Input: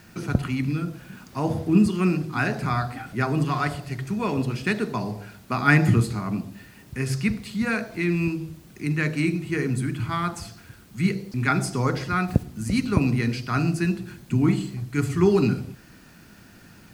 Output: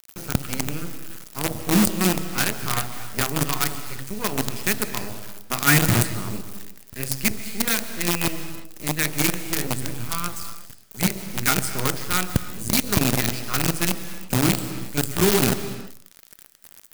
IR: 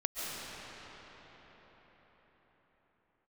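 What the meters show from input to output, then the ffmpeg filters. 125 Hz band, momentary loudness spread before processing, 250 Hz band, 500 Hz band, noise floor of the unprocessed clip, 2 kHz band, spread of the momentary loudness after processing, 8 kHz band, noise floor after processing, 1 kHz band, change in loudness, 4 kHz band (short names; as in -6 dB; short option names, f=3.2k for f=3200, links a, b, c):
-3.0 dB, 12 LU, -2.5 dB, -1.0 dB, -50 dBFS, +1.0 dB, 15 LU, +15.5 dB, -49 dBFS, 0.0 dB, +1.5 dB, +11.0 dB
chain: -filter_complex "[0:a]acrusher=bits=4:dc=4:mix=0:aa=0.000001,crystalizer=i=2:c=0,asplit=2[a][b];[1:a]atrim=start_sample=2205,afade=t=out:st=0.42:d=0.01,atrim=end_sample=18963[c];[b][c]afir=irnorm=-1:irlink=0,volume=-12dB[d];[a][d]amix=inputs=2:normalize=0,volume=-3.5dB"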